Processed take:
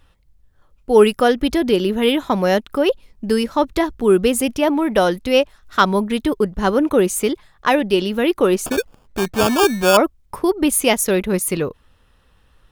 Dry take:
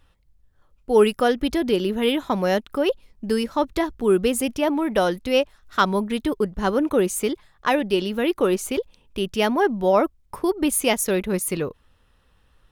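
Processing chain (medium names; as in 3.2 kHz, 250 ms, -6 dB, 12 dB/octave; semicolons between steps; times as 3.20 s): 8.66–9.97 s: sample-rate reducer 2 kHz, jitter 0%; trim +4.5 dB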